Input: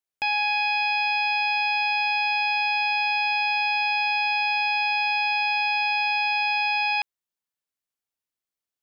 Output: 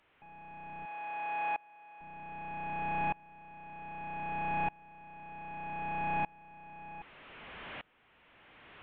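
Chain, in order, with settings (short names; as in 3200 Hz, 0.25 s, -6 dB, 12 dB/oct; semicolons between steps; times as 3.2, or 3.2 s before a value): delta modulation 16 kbps, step -39 dBFS; 0.85–2.01 HPF 530 Hz 12 dB/oct; dB-ramp tremolo swelling 0.64 Hz, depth 28 dB; gain +3 dB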